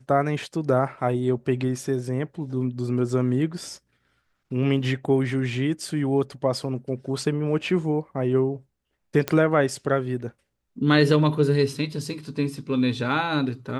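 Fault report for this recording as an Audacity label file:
9.280000	9.280000	pop -9 dBFS

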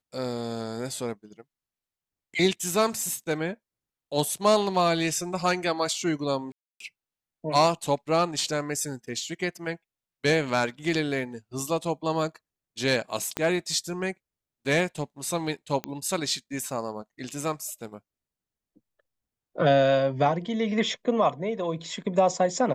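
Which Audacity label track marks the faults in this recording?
6.520000	6.800000	gap 0.283 s
13.370000	13.370000	pop -12 dBFS
15.840000	15.840000	pop -15 dBFS

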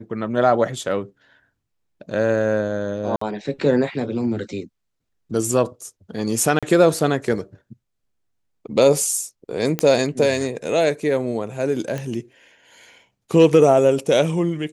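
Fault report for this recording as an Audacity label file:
3.160000	3.210000	gap 54 ms
6.590000	6.630000	gap 36 ms
9.790000	9.790000	pop -5 dBFS
11.980000	11.980000	pop -15 dBFS

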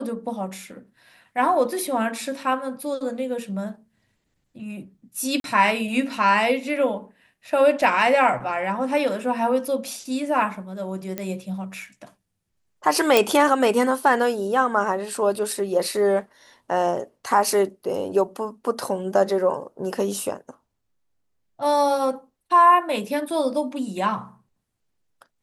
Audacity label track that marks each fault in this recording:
5.400000	5.440000	gap 42 ms
11.180000	11.180000	pop -14 dBFS
13.170000	13.170000	pop

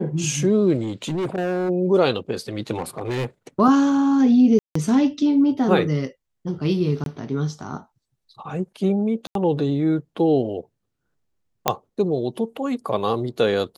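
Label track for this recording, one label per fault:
0.820000	1.700000	clipped -21 dBFS
2.780000	3.260000	clipped -21 dBFS
4.590000	4.750000	gap 0.164 s
7.040000	7.060000	gap 22 ms
9.270000	9.350000	gap 82 ms
11.680000	11.680000	pop -2 dBFS

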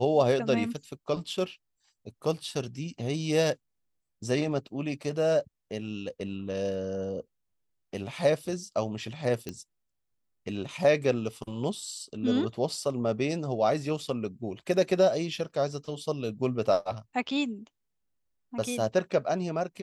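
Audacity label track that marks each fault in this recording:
9.490000	9.490000	pop -20 dBFS

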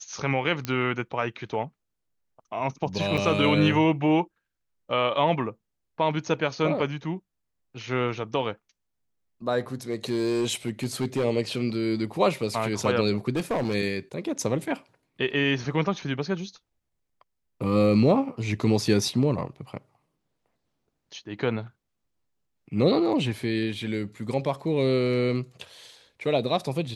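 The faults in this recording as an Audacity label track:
0.650000	0.650000	pop -13 dBFS
3.170000	3.180000	gap 7.2 ms
9.900000	11.250000	clipped -20.5 dBFS
13.300000	13.750000	clipped -22 dBFS

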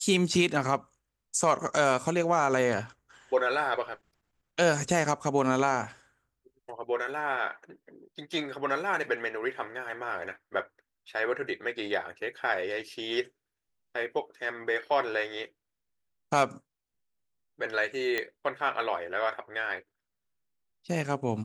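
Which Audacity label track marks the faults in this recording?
18.180000	18.180000	pop -15 dBFS

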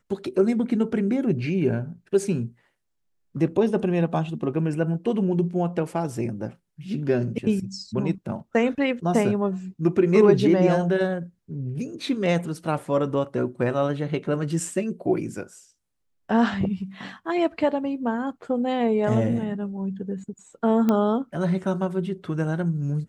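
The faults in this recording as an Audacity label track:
20.890000	20.890000	pop -11 dBFS

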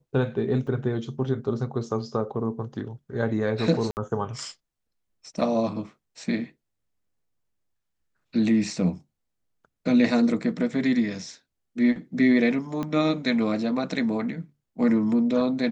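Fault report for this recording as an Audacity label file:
0.670000	0.670000	gap 3.9 ms
3.910000	3.970000	gap 59 ms
12.830000	12.830000	pop -18 dBFS

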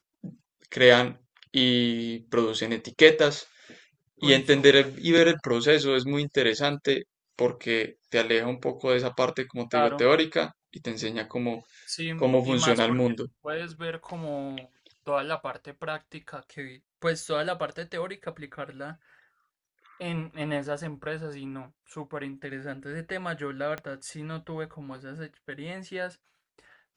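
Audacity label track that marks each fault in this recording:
23.780000	23.780000	pop -21 dBFS

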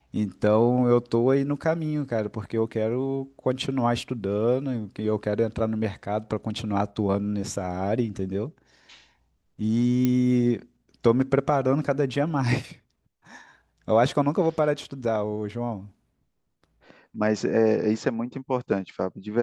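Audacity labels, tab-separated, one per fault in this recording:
10.050000	10.050000	pop -11 dBFS

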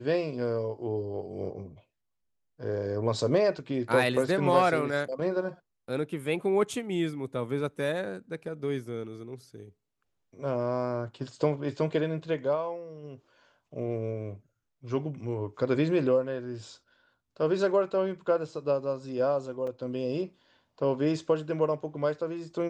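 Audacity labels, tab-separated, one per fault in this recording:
19.670000	19.670000	gap 4.3 ms

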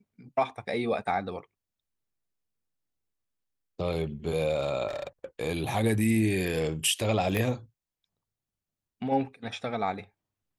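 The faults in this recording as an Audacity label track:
4.870000	5.250000	clipped -29.5 dBFS
7.370000	7.370000	pop -16 dBFS

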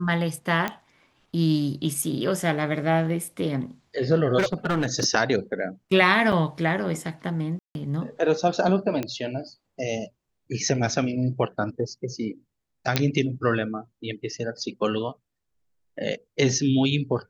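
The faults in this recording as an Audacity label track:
0.680000	0.680000	pop -13 dBFS
4.380000	5.050000	clipped -18.5 dBFS
6.320000	6.320000	gap 4.8 ms
7.590000	7.750000	gap 0.161 s
9.030000	9.030000	pop -15 dBFS
12.960000	12.960000	pop -6 dBFS

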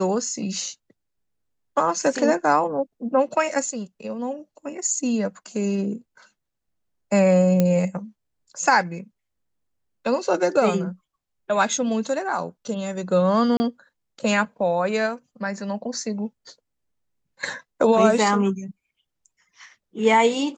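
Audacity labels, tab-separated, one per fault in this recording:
7.600000	7.600000	pop -7 dBFS
13.570000	13.600000	gap 30 ms

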